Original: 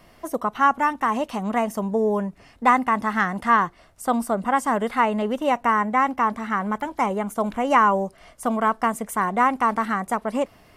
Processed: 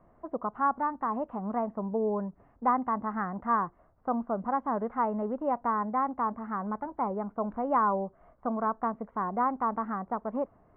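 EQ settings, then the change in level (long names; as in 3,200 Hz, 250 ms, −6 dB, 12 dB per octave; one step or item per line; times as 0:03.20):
low-pass filter 1,300 Hz 24 dB per octave
−7.5 dB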